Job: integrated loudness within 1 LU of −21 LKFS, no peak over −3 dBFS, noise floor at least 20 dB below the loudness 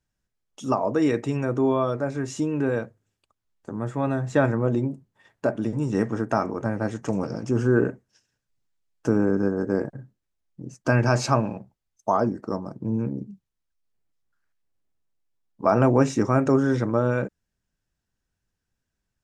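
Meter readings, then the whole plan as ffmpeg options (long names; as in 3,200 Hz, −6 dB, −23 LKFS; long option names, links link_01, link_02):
integrated loudness −24.5 LKFS; sample peak −5.5 dBFS; target loudness −21.0 LKFS
→ -af "volume=3.5dB,alimiter=limit=-3dB:level=0:latency=1"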